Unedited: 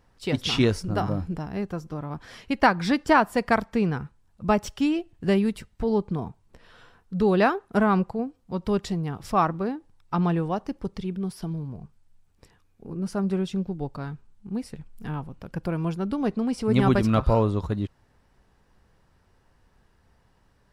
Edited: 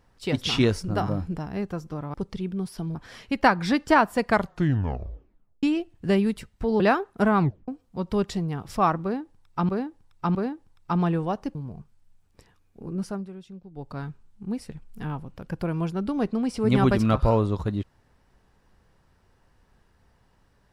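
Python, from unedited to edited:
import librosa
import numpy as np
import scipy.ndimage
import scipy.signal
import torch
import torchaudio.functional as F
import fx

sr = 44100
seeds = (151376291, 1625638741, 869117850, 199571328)

y = fx.edit(x, sr, fx.tape_stop(start_s=3.47, length_s=1.35),
    fx.cut(start_s=5.99, length_s=1.36),
    fx.tape_stop(start_s=7.95, length_s=0.28),
    fx.repeat(start_s=9.58, length_s=0.66, count=3),
    fx.move(start_s=10.78, length_s=0.81, to_s=2.14),
    fx.fade_down_up(start_s=13.04, length_s=0.98, db=-15.0, fade_s=0.28), tone=tone)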